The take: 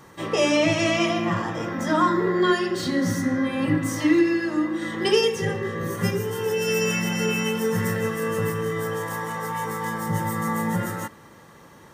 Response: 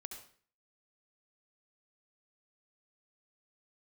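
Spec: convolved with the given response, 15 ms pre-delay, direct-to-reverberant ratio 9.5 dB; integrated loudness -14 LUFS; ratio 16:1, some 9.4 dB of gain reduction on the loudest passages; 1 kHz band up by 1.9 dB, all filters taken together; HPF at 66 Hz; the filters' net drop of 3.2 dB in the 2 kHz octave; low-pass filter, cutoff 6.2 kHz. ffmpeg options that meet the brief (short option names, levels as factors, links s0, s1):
-filter_complex "[0:a]highpass=66,lowpass=6200,equalizer=f=1000:t=o:g=3.5,equalizer=f=2000:t=o:g=-5,acompressor=threshold=0.0708:ratio=16,asplit=2[s0][s1];[1:a]atrim=start_sample=2205,adelay=15[s2];[s1][s2]afir=irnorm=-1:irlink=0,volume=0.531[s3];[s0][s3]amix=inputs=2:normalize=0,volume=5.01"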